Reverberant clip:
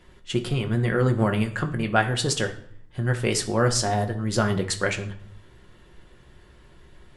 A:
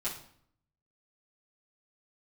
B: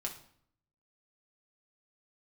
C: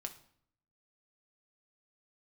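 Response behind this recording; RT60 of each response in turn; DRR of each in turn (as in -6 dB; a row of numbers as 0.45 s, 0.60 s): C; 0.60 s, 0.60 s, 0.60 s; -9.5 dB, -0.5 dB, 4.0 dB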